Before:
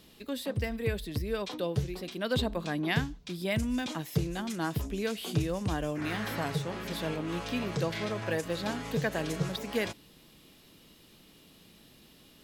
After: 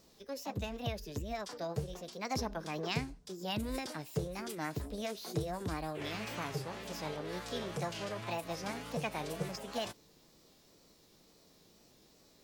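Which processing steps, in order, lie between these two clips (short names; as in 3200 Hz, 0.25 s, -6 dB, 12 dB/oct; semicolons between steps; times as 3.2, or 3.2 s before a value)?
wow and flutter 82 cents; formant shift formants +6 st; gain -6.5 dB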